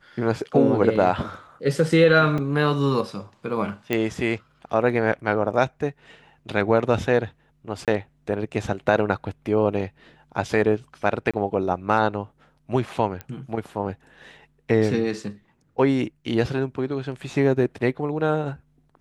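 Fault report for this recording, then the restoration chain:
0:02.38: drop-out 3.8 ms
0:03.93: click −10 dBFS
0:07.85–0:07.88: drop-out 27 ms
0:11.31–0:11.34: drop-out 26 ms
0:13.21: click −18 dBFS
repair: click removal
repair the gap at 0:02.38, 3.8 ms
repair the gap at 0:07.85, 27 ms
repair the gap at 0:11.31, 26 ms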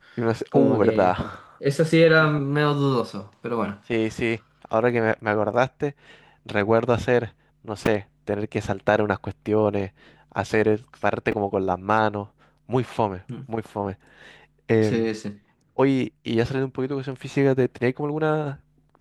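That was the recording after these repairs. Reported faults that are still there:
0:03.93: click

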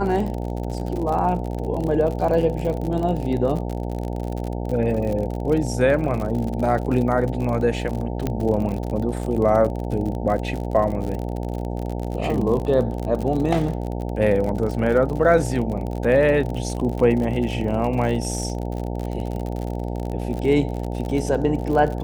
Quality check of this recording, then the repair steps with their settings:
mains buzz 60 Hz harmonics 15 −27 dBFS
surface crackle 55 per second −27 dBFS
0:08.27: click −11 dBFS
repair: click removal
hum removal 60 Hz, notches 15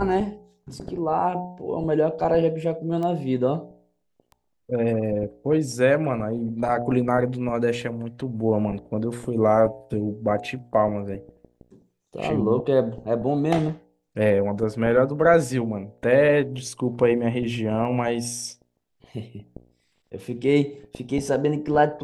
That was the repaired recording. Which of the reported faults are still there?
0:08.27: click

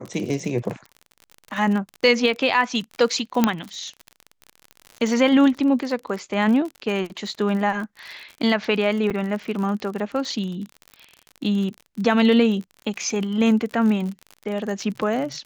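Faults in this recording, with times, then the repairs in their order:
surface crackle 49 per second −29 dBFS
0:03.44: click −3 dBFS
0:09.10–0:09.11: drop-out 6 ms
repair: click removal
repair the gap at 0:09.10, 6 ms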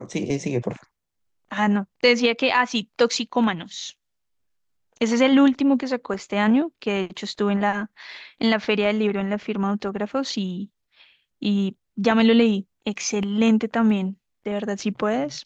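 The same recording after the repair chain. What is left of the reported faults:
0:03.44: click

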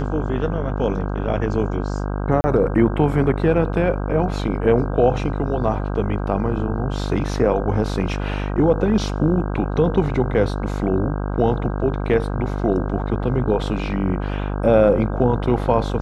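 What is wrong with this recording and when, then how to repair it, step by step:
mains buzz 50 Hz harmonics 32 −24 dBFS
0:02.41–0:02.44: drop-out 30 ms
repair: hum removal 50 Hz, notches 32
repair the gap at 0:02.41, 30 ms

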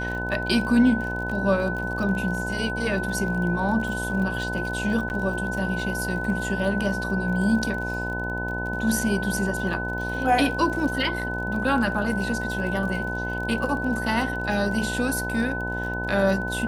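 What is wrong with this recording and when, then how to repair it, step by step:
mains buzz 60 Hz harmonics 17 −31 dBFS
surface crackle 46 per second −32 dBFS
whistle 1,500 Hz −29 dBFS
0:05.09–0:05.10: drop-out 9.9 ms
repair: click removal
hum removal 60 Hz, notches 17
notch filter 1,500 Hz, Q 30
repair the gap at 0:05.09, 9.9 ms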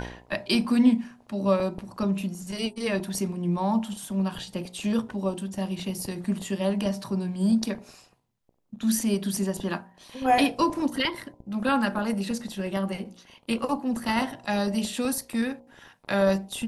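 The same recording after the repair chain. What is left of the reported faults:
none of them is left

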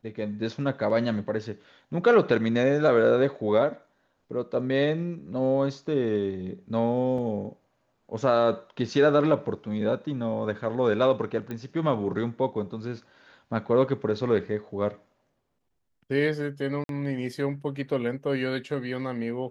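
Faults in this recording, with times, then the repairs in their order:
0:07.18: drop-out 3.6 ms
0:11.51: click −22 dBFS
0:16.84–0:16.89: drop-out 52 ms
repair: click removal
repair the gap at 0:07.18, 3.6 ms
repair the gap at 0:16.84, 52 ms

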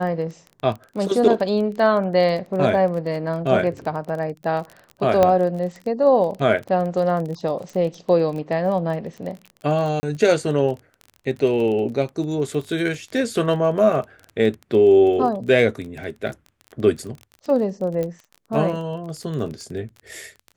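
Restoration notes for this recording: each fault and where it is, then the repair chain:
surface crackle 23 per second −29 dBFS
0:05.23: click −5 dBFS
0:10.00–0:10.03: drop-out 30 ms
0:18.03: click −15 dBFS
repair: click removal
repair the gap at 0:10.00, 30 ms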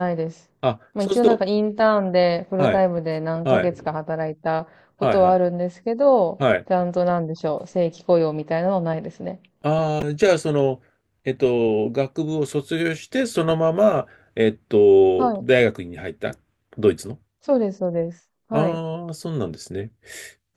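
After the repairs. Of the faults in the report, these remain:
none of them is left

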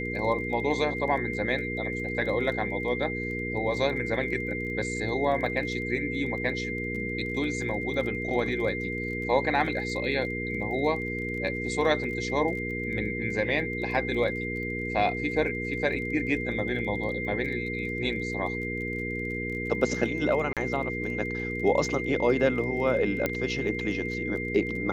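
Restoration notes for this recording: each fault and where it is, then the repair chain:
surface crackle 21 per second −37 dBFS
mains hum 60 Hz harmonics 8 −34 dBFS
whistle 2,100 Hz −33 dBFS
0:20.53–0:20.57: drop-out 37 ms
0:23.26: click −12 dBFS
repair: click removal
hum removal 60 Hz, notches 8
notch filter 2,100 Hz, Q 30
repair the gap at 0:20.53, 37 ms

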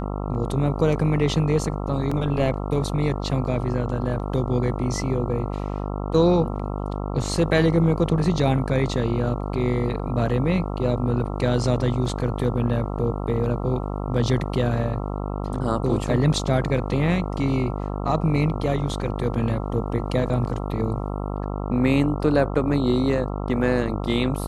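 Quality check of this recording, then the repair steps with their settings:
mains buzz 50 Hz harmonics 27 −28 dBFS
0:02.11: drop-out 4.7 ms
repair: hum removal 50 Hz, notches 27
repair the gap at 0:02.11, 4.7 ms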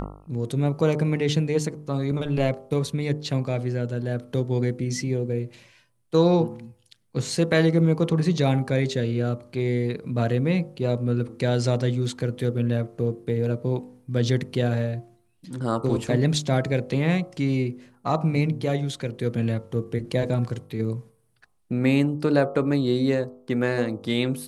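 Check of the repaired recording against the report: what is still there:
none of them is left

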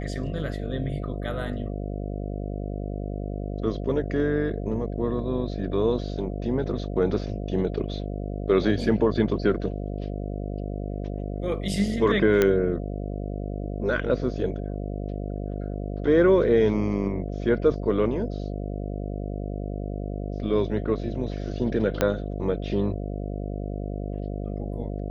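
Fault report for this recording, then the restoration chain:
mains buzz 50 Hz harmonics 14 −31 dBFS
0:12.42: click −8 dBFS
0:22.01: click −7 dBFS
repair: click removal
hum removal 50 Hz, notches 14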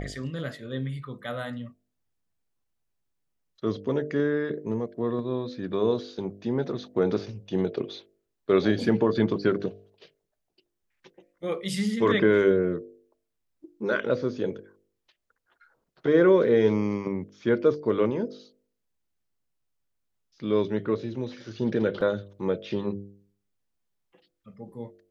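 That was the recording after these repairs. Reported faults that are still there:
0:22.01: click

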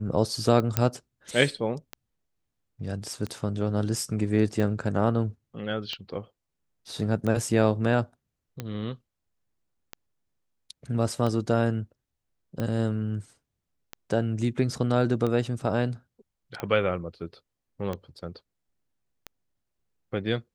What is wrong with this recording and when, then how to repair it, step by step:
scratch tick 45 rpm −18 dBFS
0:00.77: click −7 dBFS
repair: click removal

